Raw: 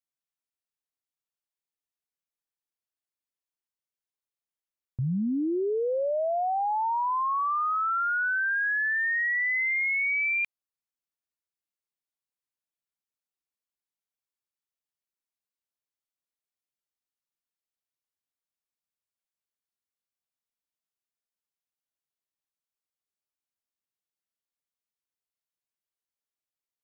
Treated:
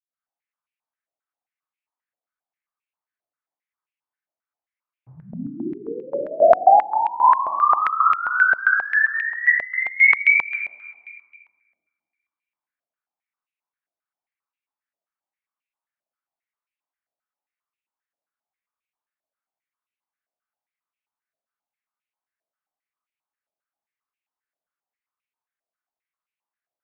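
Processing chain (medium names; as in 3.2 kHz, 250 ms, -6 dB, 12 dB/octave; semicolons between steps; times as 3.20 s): 8.23–8.87 s: companding laws mixed up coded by A; reverberation RT60 2.2 s, pre-delay 76 ms; step-sequenced band-pass 7.5 Hz 640–2500 Hz; trim -1 dB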